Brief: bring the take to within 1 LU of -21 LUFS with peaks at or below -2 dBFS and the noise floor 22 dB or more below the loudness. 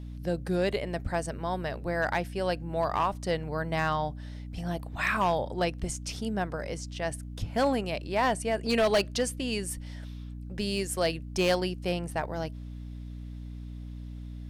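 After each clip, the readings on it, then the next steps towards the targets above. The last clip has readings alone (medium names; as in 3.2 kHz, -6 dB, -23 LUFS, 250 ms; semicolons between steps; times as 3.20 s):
clipped samples 0.5%; clipping level -19.0 dBFS; hum 60 Hz; highest harmonic 300 Hz; hum level -37 dBFS; loudness -30.0 LUFS; peak level -19.0 dBFS; loudness target -21.0 LUFS
-> clip repair -19 dBFS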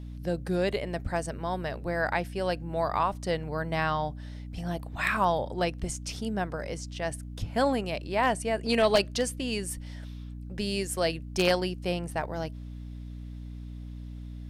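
clipped samples 0.0%; hum 60 Hz; highest harmonic 300 Hz; hum level -37 dBFS
-> hum notches 60/120/180/240/300 Hz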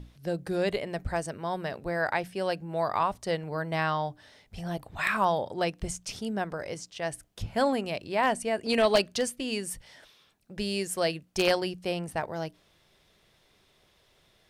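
hum not found; loudness -30.0 LUFS; peak level -10.0 dBFS; loudness target -21.0 LUFS
-> trim +9 dB; peak limiter -2 dBFS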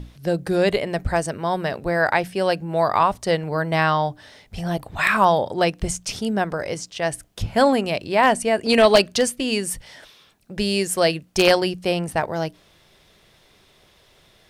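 loudness -21.0 LUFS; peak level -2.0 dBFS; noise floor -56 dBFS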